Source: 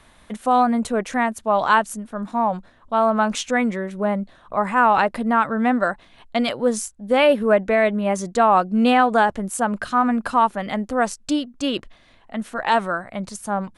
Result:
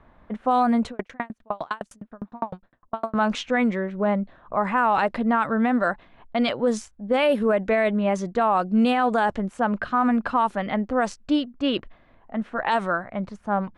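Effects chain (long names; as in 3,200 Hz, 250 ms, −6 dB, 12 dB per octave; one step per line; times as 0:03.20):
low-pass that shuts in the quiet parts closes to 1,200 Hz, open at −11.5 dBFS
brickwall limiter −12 dBFS, peak gain reduction 7.5 dB
0:00.89–0:03.15: tremolo with a ramp in dB decaying 9.8 Hz, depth 39 dB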